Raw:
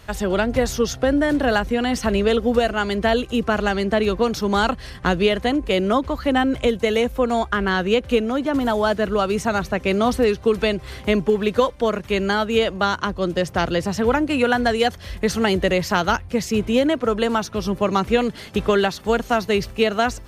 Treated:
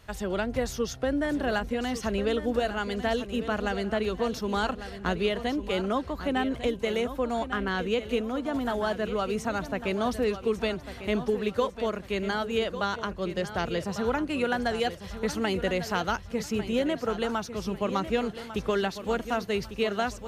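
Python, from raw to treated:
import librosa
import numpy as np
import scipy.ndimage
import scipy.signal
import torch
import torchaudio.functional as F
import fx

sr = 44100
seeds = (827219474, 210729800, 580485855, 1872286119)

y = fx.echo_feedback(x, sr, ms=1149, feedback_pct=34, wet_db=-11.5)
y = y * librosa.db_to_amplitude(-9.0)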